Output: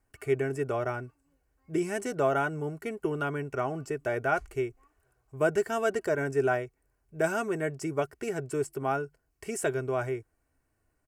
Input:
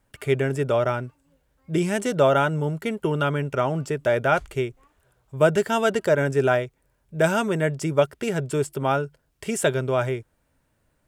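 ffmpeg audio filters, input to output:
-af "equalizer=f=3.5k:t=o:w=0.33:g=-13.5,aecho=1:1:2.7:0.5,volume=-7.5dB"

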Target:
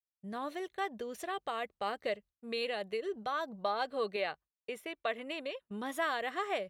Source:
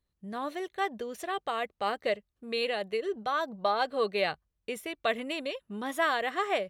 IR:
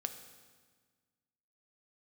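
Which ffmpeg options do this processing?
-filter_complex "[0:a]asettb=1/sr,asplit=3[a][b][c];[a]atrim=end=4.164[d];[b]atrim=start=4.16:end=5.71,asetpts=PTS-STARTPTS,afade=t=in:d=0.004:c=qsin,afade=t=out:st=1.546:d=0.004:c=qsin,bass=f=250:g=-9,treble=f=4k:g=-7[e];[c]atrim=start=5.706[f];[d][e]acrossfade=d=0.004:c1=hsin:c2=qsin[g];[g][f]acrossfade=d=0.004:c1=qsin:c2=hsin,agate=range=-33dB:threshold=-43dB:ratio=3:detection=peak,asplit=2[h][i];[i]acompressor=threshold=-35dB:ratio=6,volume=-0.5dB[j];[h][j]amix=inputs=2:normalize=0,volume=-8dB"

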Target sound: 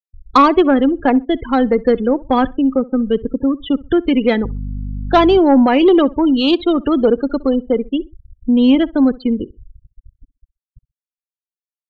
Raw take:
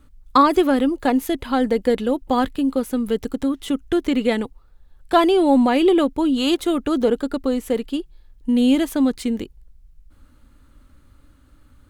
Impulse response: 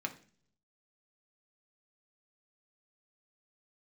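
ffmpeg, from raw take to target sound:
-filter_complex "[0:a]asettb=1/sr,asplit=3[a][b][c];[a]atrim=end=4.434[d];[b]atrim=start=4.43:end=5.39,asetpts=PTS-STARTPTS,afade=t=in:d=0.004:c=qsin,afade=t=out:st=0.956:d=0.004:c=qsin,aeval=exprs='val(0)+0.0398*(sin(2*PI*50*n/s)+sin(2*PI*2*50*n/s)/2+sin(2*PI*3*50*n/s)/3+sin(2*PI*4*50*n/s)/4+sin(2*PI*5*50*n/s)/5)':c=same[e];[c]atrim=start=5.386[f];[d][e]acrossfade=d=0.004:c1=hsin:c2=qsin[g];[g][f]acrossfade=d=0.004:c1=qsin:c2=hsin,acrossover=split=430[h][i];[h]acrusher=bits=6:mix=0:aa=0.000001[j];[j][i]amix=inputs=2:normalize=0,aresample=11025,aresample=44100,afftfilt=real='re*gte(hypot(re,im),0.0562)':imag='im*gte(hypot(re,im),0.0562)':win_size=1024:overlap=0.75,asplit=2[k][l];[l]aeval=exprs='0.75*sin(PI/2*2*val(0)/0.75)':c=same,volume=-10.5dB[m];[k][m]amix=inputs=2:normalize=0,asplit=2[n][o];[o]adelay=64,lowpass=f=1.8k:p=1,volume=-21dB,asplit=2[p][q];[q]adelay=64,lowpass=f=1.8k:p=1,volume=0.27[r];[n][p][r]amix=inputs=3:normalize=0"

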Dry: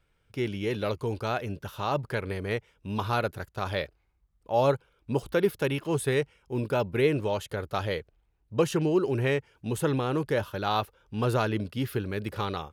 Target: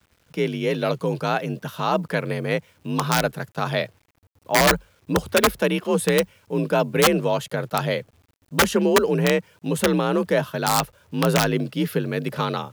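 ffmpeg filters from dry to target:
-af "aeval=exprs='(mod(6.31*val(0)+1,2)-1)/6.31':c=same,afreqshift=45,acrusher=bits=10:mix=0:aa=0.000001,volume=6.5dB"

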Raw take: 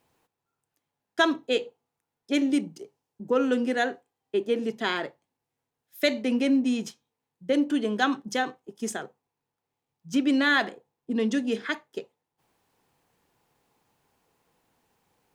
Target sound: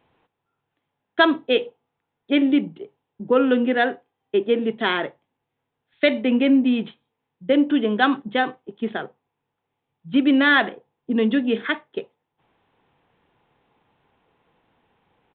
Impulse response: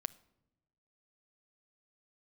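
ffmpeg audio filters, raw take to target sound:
-af "aresample=8000,aresample=44100,volume=6dB"

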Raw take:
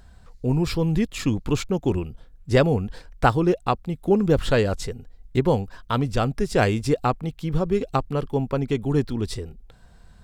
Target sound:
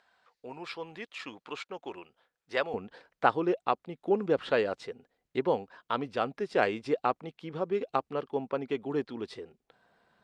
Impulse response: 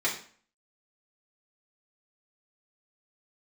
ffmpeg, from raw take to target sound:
-af "asetnsamples=n=441:p=0,asendcmd='2.74 highpass f 350',highpass=770,lowpass=3.6k,volume=-4.5dB" -ar 48000 -c:a libopus -b:a 48k

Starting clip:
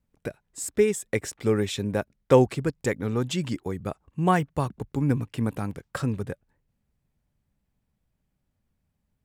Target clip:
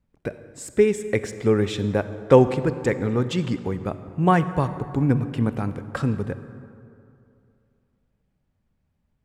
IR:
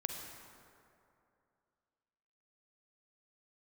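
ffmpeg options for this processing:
-filter_complex "[0:a]aemphasis=mode=reproduction:type=50kf,asplit=2[a][b];[1:a]atrim=start_sample=2205[c];[b][c]afir=irnorm=-1:irlink=0,volume=-4.5dB[d];[a][d]amix=inputs=2:normalize=0"

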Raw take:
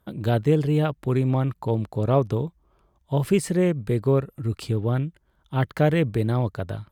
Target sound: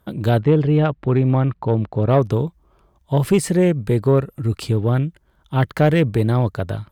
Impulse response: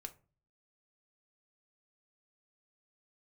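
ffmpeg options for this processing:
-filter_complex "[0:a]asplit=3[a][b][c];[a]afade=t=out:st=0.39:d=0.02[d];[b]lowpass=3k,afade=t=in:st=0.39:d=0.02,afade=t=out:st=2.08:d=0.02[e];[c]afade=t=in:st=2.08:d=0.02[f];[d][e][f]amix=inputs=3:normalize=0,asoftclip=type=tanh:threshold=-11.5dB,volume=6dB"

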